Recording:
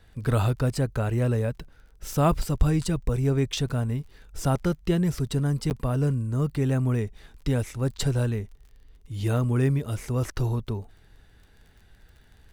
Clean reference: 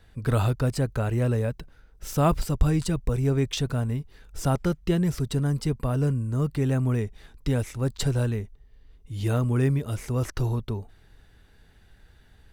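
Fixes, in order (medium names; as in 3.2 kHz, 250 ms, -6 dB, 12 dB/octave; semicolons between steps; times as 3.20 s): de-click; interpolate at 5.70 s, 9.6 ms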